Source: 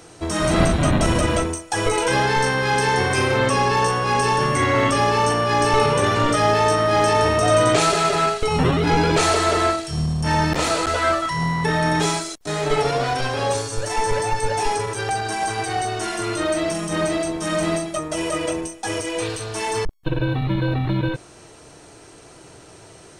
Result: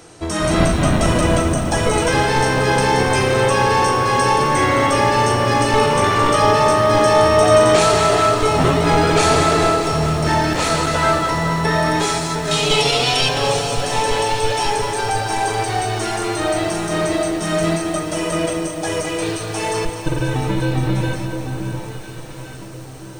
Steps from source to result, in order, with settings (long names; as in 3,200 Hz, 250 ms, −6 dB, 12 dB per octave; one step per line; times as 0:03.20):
0:12.51–0:13.29: high shelf with overshoot 2,200 Hz +8.5 dB, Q 3
delay that swaps between a low-pass and a high-pass 707 ms, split 1,200 Hz, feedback 55%, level −6 dB
feedback echo at a low word length 214 ms, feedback 80%, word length 7 bits, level −10 dB
level +1.5 dB